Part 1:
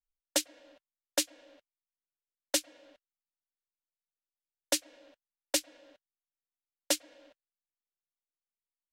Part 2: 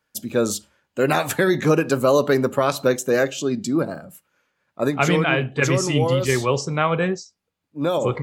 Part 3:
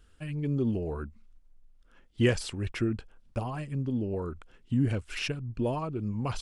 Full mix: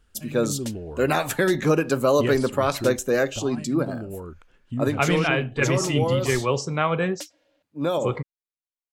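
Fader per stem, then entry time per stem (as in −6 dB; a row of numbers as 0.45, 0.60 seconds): −9.5, −2.5, −2.5 decibels; 0.30, 0.00, 0.00 seconds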